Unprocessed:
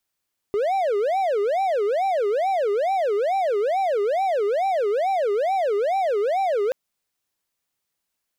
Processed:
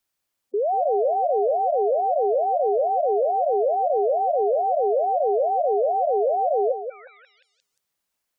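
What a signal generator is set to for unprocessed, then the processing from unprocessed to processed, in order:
siren wail 401–784 Hz 2.3/s triangle -17 dBFS 6.18 s
on a send: delay with a stepping band-pass 0.176 s, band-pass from 690 Hz, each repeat 0.7 oct, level -4.5 dB; on the sum: spectral gate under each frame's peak -15 dB strong

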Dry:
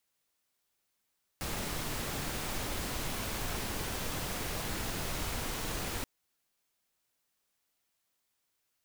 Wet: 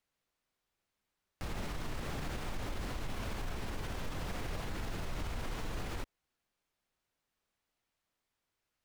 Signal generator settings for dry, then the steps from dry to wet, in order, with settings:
noise pink, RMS -36 dBFS 4.63 s
LPF 2600 Hz 6 dB/oct; low shelf 75 Hz +8.5 dB; limiter -30 dBFS

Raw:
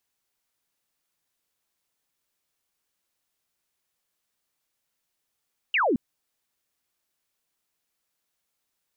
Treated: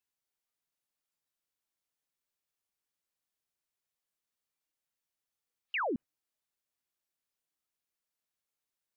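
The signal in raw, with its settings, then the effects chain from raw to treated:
laser zap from 3000 Hz, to 210 Hz, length 0.22 s sine, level -19.5 dB
spectral noise reduction 11 dB; limiter -29 dBFS

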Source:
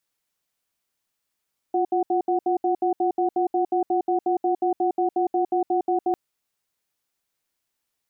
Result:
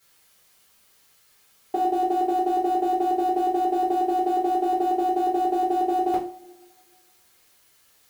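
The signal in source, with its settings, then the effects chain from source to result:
cadence 353 Hz, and 740 Hz, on 0.11 s, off 0.07 s, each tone -21.5 dBFS 4.40 s
G.711 law mismatch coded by mu; compressor 1.5:1, threshold -30 dBFS; two-slope reverb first 0.34 s, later 1.8 s, from -27 dB, DRR -9 dB

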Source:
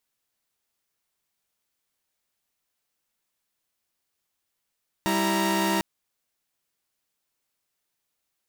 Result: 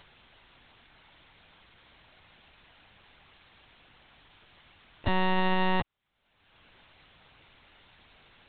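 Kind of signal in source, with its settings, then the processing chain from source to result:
chord G3/E4/A#5 saw, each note -24 dBFS 0.75 s
upward compressor, threshold -28 dBFS; LPC vocoder at 8 kHz pitch kept

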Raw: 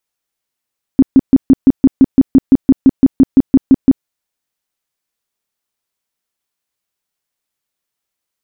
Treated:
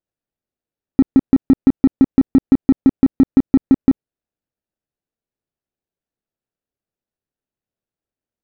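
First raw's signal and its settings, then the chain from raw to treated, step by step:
tone bursts 267 Hz, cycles 9, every 0.17 s, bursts 18, -1.5 dBFS
median filter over 41 samples; compressor, threshold -8 dBFS

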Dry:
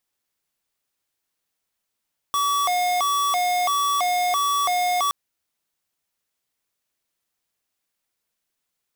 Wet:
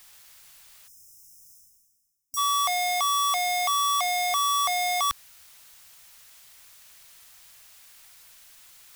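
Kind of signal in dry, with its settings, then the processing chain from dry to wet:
siren hi-lo 718–1140 Hz 1.5/s square -21.5 dBFS 2.77 s
spectral delete 0.88–2.37, 260–5000 Hz; bell 300 Hz -15 dB 2 oct; reverse; upward compressor, threshold -29 dBFS; reverse

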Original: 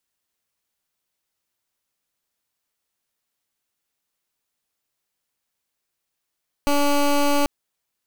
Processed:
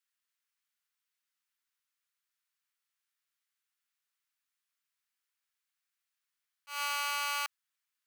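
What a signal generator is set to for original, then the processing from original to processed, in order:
pulse 287 Hz, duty 16% -18 dBFS 0.79 s
high shelf 2100 Hz -9 dB; auto swell 0.154 s; HPF 1300 Hz 24 dB/oct

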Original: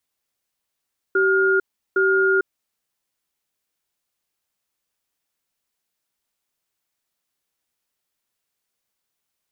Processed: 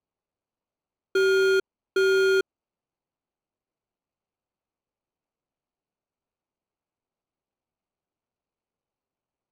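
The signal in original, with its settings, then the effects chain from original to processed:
cadence 384 Hz, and 1420 Hz, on 0.45 s, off 0.36 s, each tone -17.5 dBFS 1.50 s
median filter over 25 samples

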